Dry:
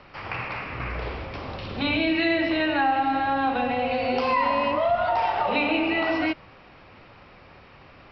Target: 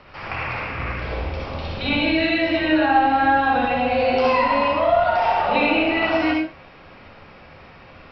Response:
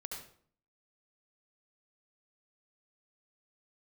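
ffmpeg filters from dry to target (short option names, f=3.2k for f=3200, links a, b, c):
-filter_complex "[0:a]asettb=1/sr,asplit=3[a][b][c];[a]atrim=end=0.924[d];[b]atrim=start=0.92:end=3.06,asetpts=PTS-STARTPTS,afade=t=in:d=0.004:c=qsin,afade=t=out:st=2.136:d=0.004:c=qsin,acrossover=split=1400[e][f];[e]adelay=60[g];[g][f]amix=inputs=2:normalize=0,atrim=end_sample=94374[h];[c]atrim=start=3.056[i];[d][h]acrossfade=d=0.004:c1=hsin:c2=qsin[j];[j][i]acrossfade=d=0.004:c1=qsin:c2=hsin[k];[1:a]atrim=start_sample=2205,afade=t=out:st=0.3:d=0.01,atrim=end_sample=13671,asetrate=52920,aresample=44100[l];[k][l]afir=irnorm=-1:irlink=0,volume=8dB"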